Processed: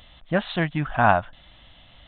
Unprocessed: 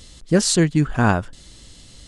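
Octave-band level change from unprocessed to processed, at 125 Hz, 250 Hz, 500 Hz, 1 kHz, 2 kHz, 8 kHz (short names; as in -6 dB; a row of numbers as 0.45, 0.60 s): -7.5 dB, -9.0 dB, -2.5 dB, +4.0 dB, +1.0 dB, under -40 dB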